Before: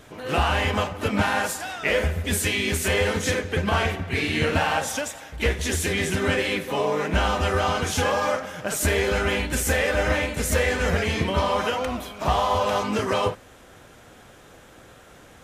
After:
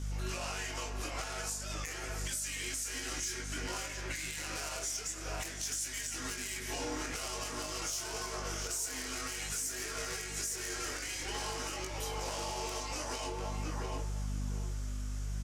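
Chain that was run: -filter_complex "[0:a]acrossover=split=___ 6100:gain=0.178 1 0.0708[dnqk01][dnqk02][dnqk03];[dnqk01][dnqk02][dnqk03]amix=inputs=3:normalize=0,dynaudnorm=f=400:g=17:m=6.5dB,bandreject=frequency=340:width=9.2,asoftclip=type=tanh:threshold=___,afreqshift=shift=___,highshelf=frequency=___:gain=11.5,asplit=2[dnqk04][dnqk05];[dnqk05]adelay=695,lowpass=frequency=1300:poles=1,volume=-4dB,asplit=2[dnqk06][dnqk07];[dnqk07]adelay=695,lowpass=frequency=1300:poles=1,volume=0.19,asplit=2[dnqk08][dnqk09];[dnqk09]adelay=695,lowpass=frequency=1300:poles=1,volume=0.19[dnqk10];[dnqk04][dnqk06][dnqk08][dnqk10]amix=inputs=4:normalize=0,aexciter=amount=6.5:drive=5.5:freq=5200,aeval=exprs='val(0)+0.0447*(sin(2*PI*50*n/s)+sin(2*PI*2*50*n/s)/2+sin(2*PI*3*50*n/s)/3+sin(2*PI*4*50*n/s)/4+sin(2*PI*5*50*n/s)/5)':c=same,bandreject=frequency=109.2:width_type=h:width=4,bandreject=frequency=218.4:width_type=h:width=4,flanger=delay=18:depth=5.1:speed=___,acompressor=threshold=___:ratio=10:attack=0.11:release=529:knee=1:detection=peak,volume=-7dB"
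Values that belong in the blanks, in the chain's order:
390, -18dB, -140, 2400, 0.5, -22dB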